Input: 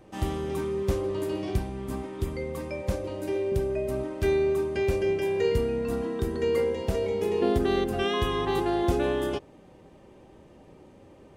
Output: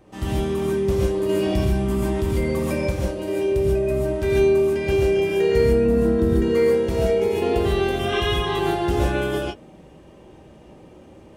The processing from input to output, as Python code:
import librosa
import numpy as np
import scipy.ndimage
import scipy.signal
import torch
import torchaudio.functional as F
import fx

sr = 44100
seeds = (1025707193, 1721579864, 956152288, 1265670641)

y = fx.tilt_shelf(x, sr, db=4.0, hz=720.0, at=(5.73, 6.41))
y = fx.rev_gated(y, sr, seeds[0], gate_ms=170, shape='rising', drr_db=-4.5)
y = fx.env_flatten(y, sr, amount_pct=50, at=(1.29, 2.91))